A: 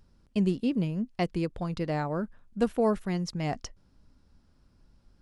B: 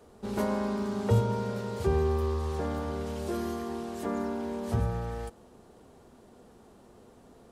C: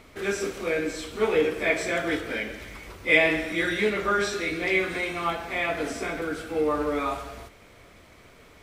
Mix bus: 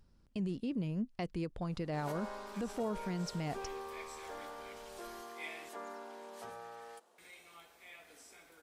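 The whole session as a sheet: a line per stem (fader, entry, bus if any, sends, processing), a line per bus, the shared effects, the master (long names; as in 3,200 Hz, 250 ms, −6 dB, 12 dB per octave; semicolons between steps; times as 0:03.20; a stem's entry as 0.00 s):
−5.0 dB, 0.00 s, no send, no processing
−7.0 dB, 1.70 s, no send, high-pass filter 660 Hz 12 dB per octave
−15.5 dB, 2.30 s, muted 0:05.69–0:07.18, no send, first-order pre-emphasis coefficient 0.9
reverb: not used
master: brickwall limiter −29 dBFS, peak gain reduction 10.5 dB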